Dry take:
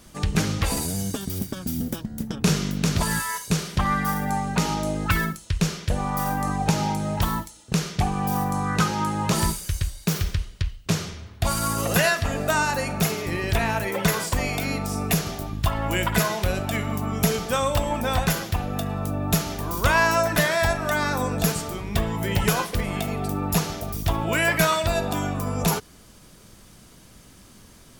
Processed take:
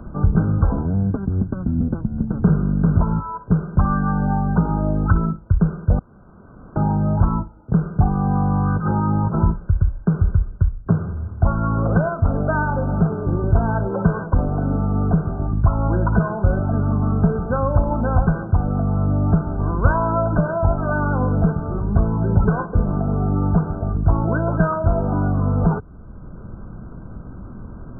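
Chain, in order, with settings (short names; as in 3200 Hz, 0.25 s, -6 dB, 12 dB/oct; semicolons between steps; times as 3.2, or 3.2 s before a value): low shelf 250 Hz +10.5 dB; 5.99–6.76 room tone; 8.7–9.35 negative-ratio compressor -21 dBFS, ratio -1; brick-wall FIR low-pass 1600 Hz; three-band squash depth 40%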